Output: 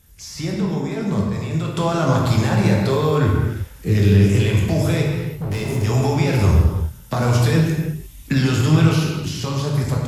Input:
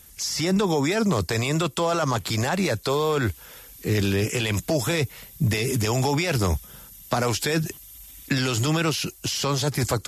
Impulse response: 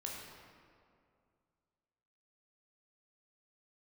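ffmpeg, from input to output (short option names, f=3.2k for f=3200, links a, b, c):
-filter_complex "[0:a]asettb=1/sr,asplit=3[a][b][c];[a]atrim=end=0.544[d];[b]atrim=start=0.54:end=1.68,asetpts=PTS-STARTPTS,afade=t=in:d=0.004:c=qsin,afade=t=out:st=1.136:d=0.004:c=qsin,agate=range=-33dB:threshold=-16dB:ratio=3:detection=peak[e];[c]atrim=start=1.676[f];[d][e]acrossfade=d=0.004:c1=hsin:c2=qsin[g];[g][f]acrossfade=d=0.004:c1=qsin:c2=hsin,bass=f=250:g=9,treble=f=4k:g=-3,dynaudnorm=f=180:g=11:m=6.5dB,asplit=3[h][i][j];[h]afade=t=out:st=5.02:d=0.02[k];[i]asoftclip=type=hard:threshold=-18dB,afade=t=in:st=5.02:d=0.02,afade=t=out:st=5.83:d=0.02[l];[j]afade=t=in:st=5.83:d=0.02[m];[k][l][m]amix=inputs=3:normalize=0[n];[1:a]atrim=start_sample=2205,afade=t=out:st=0.41:d=0.01,atrim=end_sample=18522[o];[n][o]afir=irnorm=-1:irlink=0,volume=-2dB"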